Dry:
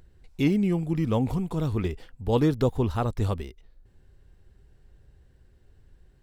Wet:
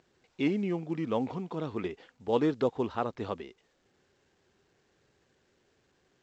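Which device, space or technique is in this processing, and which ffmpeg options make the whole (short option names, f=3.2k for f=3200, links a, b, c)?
telephone: -af "highpass=270,lowpass=3.6k,volume=-2dB" -ar 16000 -c:a pcm_alaw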